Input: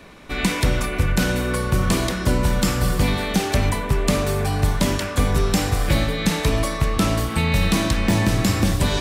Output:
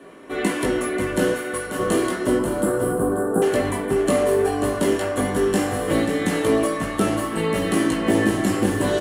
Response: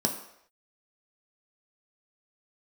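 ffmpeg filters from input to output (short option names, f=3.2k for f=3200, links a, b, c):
-filter_complex "[0:a]asettb=1/sr,asplit=3[a][b][c];[a]atrim=end=1.324[d];[b]atrim=start=1.32:end=1.79,asetpts=PTS-STARTPTS,afade=t=in:d=0.004:c=qsin,afade=t=out:st=0.466:d=0.004:c=qsin,highpass=f=920:p=1[e];[c]atrim=start=1.786[f];[d][e]acrossfade=d=0.004:c1=hsin:c2=qsin[g];[g][f]acrossfade=d=0.004:c1=qsin:c2=hsin,flanger=delay=17.5:depth=2.1:speed=0.64,asettb=1/sr,asplit=3[h][i][j];[h]atrim=end=2.394[k];[i]atrim=start=2.39:end=3.42,asetpts=PTS-STARTPTS,afade=t=in:d=0.004:c=qsin,afade=t=out:st=1.026:d=0.004:c=qsin,asuperstop=centerf=3600:order=20:qfactor=0.59[l];[j]atrim=start=3.416[m];[k][l]acrossfade=d=0.004:c1=hsin:c2=qsin[n];[n][m]acrossfade=d=0.004:c1=qsin:c2=hsin,aecho=1:1:537|1074|1611:0.335|0.0603|0.0109[o];[1:a]atrim=start_sample=2205,asetrate=79380,aresample=44100[p];[o][p]afir=irnorm=-1:irlink=0,volume=-3.5dB"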